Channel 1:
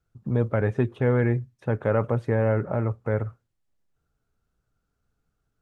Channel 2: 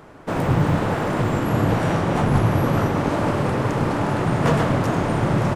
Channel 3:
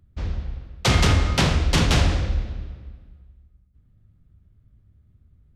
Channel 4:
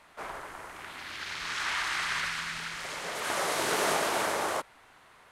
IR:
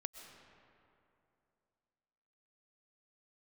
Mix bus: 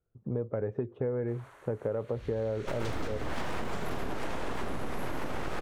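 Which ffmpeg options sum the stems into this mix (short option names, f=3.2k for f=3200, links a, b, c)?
-filter_complex "[0:a]lowpass=f=1.1k:p=1,equalizer=f=460:t=o:w=1.1:g=9,volume=-7dB,asplit=2[a][b];[1:a]alimiter=limit=-14dB:level=0:latency=1:release=199,aeval=exprs='abs(val(0))':c=same,adelay=2400,volume=3dB,asplit=2[c][d];[d]volume=-8dB[e];[2:a]adelay=2000,volume=-17dB[f];[3:a]bandreject=f=5k:w=7.5,adelay=1100,volume=-14.5dB,asplit=2[g][h];[h]volume=-6dB[i];[b]apad=whole_len=350614[j];[c][j]sidechaincompress=threshold=-40dB:ratio=8:attack=7.2:release=151[k];[e][i]amix=inputs=2:normalize=0,aecho=0:1:128:1[l];[a][k][f][g][l]amix=inputs=5:normalize=0,acompressor=threshold=-28dB:ratio=10"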